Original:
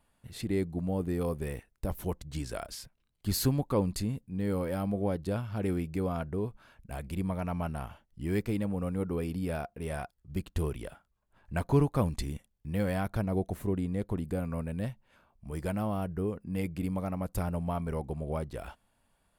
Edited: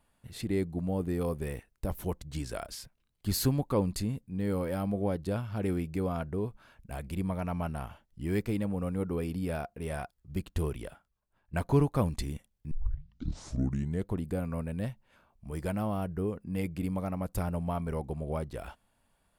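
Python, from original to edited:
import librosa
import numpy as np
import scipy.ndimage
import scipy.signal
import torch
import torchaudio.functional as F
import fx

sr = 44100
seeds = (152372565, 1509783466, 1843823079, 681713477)

y = fx.edit(x, sr, fx.fade_out_to(start_s=10.81, length_s=0.72, floor_db=-14.5),
    fx.tape_start(start_s=12.71, length_s=1.38), tone=tone)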